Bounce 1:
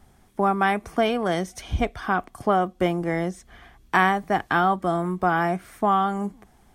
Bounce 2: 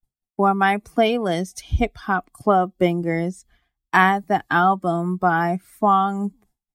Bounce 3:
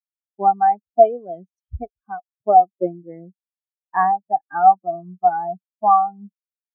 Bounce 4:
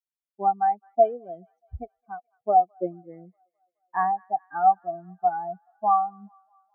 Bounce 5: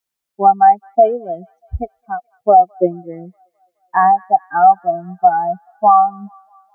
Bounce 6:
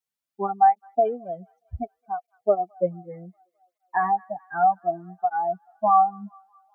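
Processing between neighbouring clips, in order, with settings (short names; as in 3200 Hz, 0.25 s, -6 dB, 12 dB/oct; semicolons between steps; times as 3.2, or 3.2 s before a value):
per-bin expansion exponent 1.5; expander -55 dBFS; gain +5.5 dB
dynamic EQ 700 Hz, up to +6 dB, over -28 dBFS, Q 0.86; spectral expander 2.5:1; gain -3 dB
thin delay 0.212 s, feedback 61%, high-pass 1500 Hz, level -24 dB; gain -6.5 dB
maximiser +14.5 dB; gain -1 dB
tape flanging out of phase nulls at 0.66 Hz, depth 3.5 ms; gain -5.5 dB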